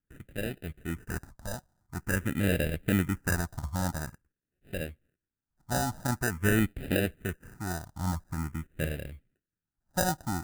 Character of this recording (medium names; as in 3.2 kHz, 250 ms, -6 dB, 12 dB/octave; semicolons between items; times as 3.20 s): aliases and images of a low sample rate 1.1 kHz, jitter 0%; phasing stages 4, 0.47 Hz, lowest notch 410–1000 Hz